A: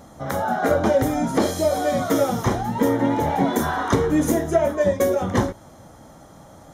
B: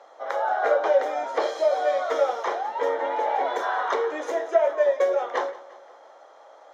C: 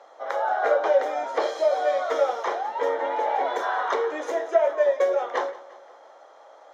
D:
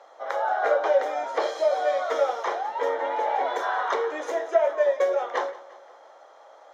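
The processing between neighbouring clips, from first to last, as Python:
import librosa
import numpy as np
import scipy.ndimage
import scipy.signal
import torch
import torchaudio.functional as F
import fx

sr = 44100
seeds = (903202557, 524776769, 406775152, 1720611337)

y1 = scipy.signal.sosfilt(scipy.signal.butter(6, 450.0, 'highpass', fs=sr, output='sos'), x)
y1 = fx.air_absorb(y1, sr, metres=190.0)
y1 = fx.echo_feedback(y1, sr, ms=175, feedback_pct=54, wet_db=-19.5)
y2 = y1
y3 = fx.low_shelf(y2, sr, hz=220.0, db=-8.0)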